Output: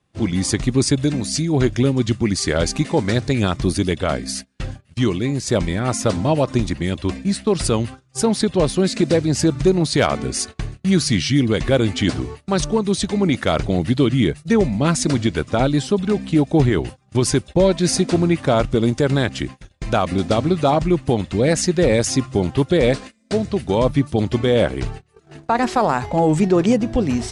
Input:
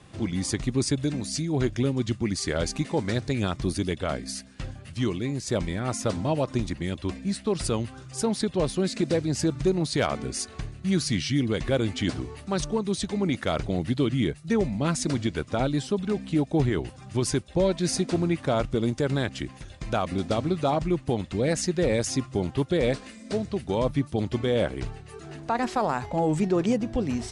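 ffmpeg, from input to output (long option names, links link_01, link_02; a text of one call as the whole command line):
ffmpeg -i in.wav -af "agate=range=-25dB:threshold=-38dB:ratio=16:detection=peak,volume=8dB" out.wav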